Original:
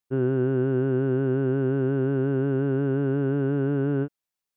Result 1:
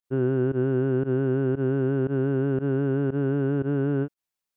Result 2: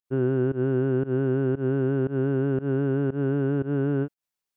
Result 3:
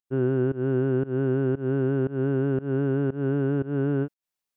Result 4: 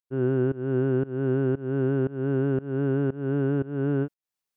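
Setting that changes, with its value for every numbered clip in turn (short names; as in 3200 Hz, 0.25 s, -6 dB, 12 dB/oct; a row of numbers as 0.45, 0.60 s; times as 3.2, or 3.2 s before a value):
pump, release: 79, 135, 201, 323 ms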